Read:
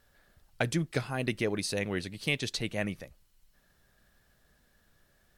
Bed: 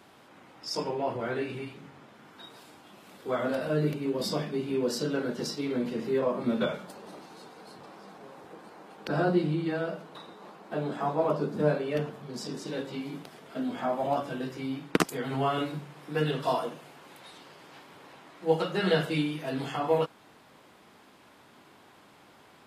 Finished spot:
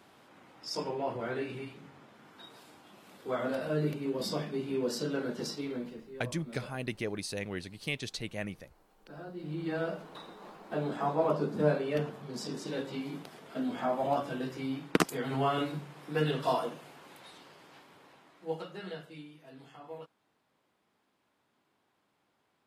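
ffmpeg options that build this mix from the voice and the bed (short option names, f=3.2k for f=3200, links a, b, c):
-filter_complex "[0:a]adelay=5600,volume=-5dB[a];[1:a]volume=14dB,afade=t=out:st=5.53:d=0.54:silence=0.16788,afade=t=in:st=9.37:d=0.46:silence=0.133352,afade=t=out:st=16.9:d=2.12:silence=0.125893[b];[a][b]amix=inputs=2:normalize=0"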